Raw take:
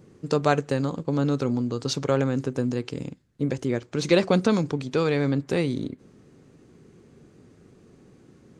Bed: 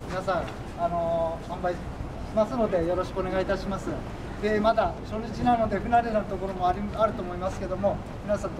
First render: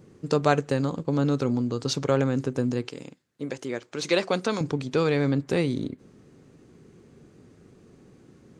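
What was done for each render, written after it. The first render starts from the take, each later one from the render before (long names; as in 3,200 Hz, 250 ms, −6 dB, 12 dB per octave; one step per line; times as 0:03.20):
0:02.89–0:04.61: high-pass filter 560 Hz 6 dB per octave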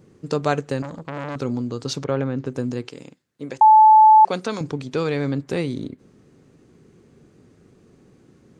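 0:00.82–0:01.36: saturating transformer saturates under 1,500 Hz
0:02.04–0:02.46: high-frequency loss of the air 200 metres
0:03.61–0:04.25: beep over 868 Hz −7 dBFS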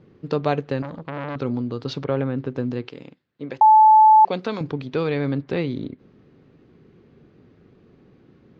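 low-pass filter 4,100 Hz 24 dB per octave
dynamic equaliser 1,400 Hz, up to −7 dB, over −33 dBFS, Q 2.4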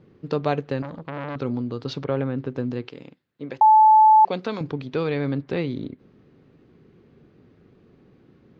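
level −1.5 dB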